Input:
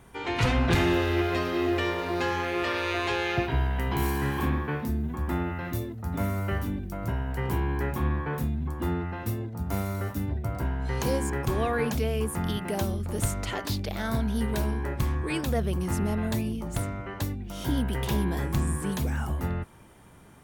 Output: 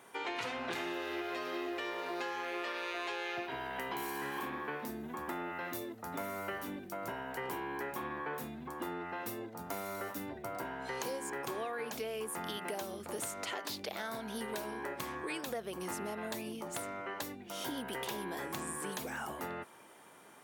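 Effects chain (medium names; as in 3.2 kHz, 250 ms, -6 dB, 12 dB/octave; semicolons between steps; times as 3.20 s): high-pass 400 Hz 12 dB/octave; compression 6:1, threshold -36 dBFS, peak gain reduction 11.5 dB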